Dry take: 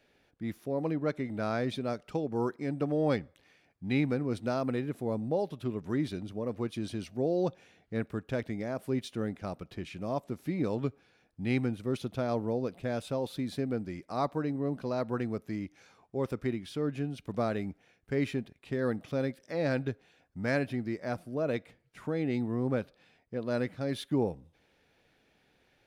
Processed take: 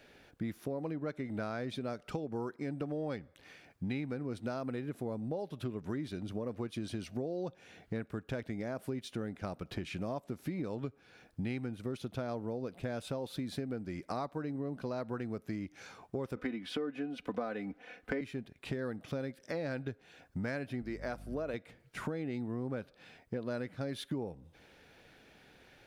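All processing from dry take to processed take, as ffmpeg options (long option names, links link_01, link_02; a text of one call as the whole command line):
ffmpeg -i in.wav -filter_complex "[0:a]asettb=1/sr,asplit=3[link_01][link_02][link_03];[link_01]atrim=end=16.364[link_04];[link_02]atrim=start=16.36:end=18.21,asetpts=PTS-STARTPTS,afade=type=in:duration=0.004:curve=qsin,afade=type=out:start_time=1.846:duration=0.004:curve=qsin,acrossover=split=250 3600:gain=0.251 1 0.251[link_05][link_06][link_07];[link_05][link_06][link_07]amix=inputs=3:normalize=0,aecho=1:1:4:0.64,atrim=end_sample=81585,acontrast=71[link_08];[link_03]atrim=start=18.206[link_09];[link_04][link_08]acrossfade=duration=0.004:curve1=hsin:curve2=qsin[link_10];[link_10][link_09]acrossfade=duration=0.004:curve1=qsin:curve2=hsin,asettb=1/sr,asplit=3[link_11][link_12][link_13];[link_11]atrim=end=20.824[link_14];[link_12]atrim=start=20.82:end=21.54,asetpts=PTS-STARTPTS,afade=type=in:duration=0.004:curve=qsin,afade=type=out:start_time=0.716:duration=0.004:curve=qsin,highpass=frequency=290:poles=1,aeval=exprs='val(0)+0.00447*(sin(2*PI*50*n/s)+sin(2*PI*2*50*n/s)/2+sin(2*PI*3*50*n/s)/3+sin(2*PI*4*50*n/s)/4+sin(2*PI*5*50*n/s)/5)':channel_layout=same[link_15];[link_13]atrim=start=21.536[link_16];[link_14][link_15]acrossfade=duration=0.004:curve1=hsin:curve2=qsin[link_17];[link_17][link_16]acrossfade=duration=0.004:curve1=qsin:curve2=hsin,equalizer=frequency=1500:width_type=o:width=0.26:gain=3,acompressor=threshold=-43dB:ratio=8,volume=8dB" out.wav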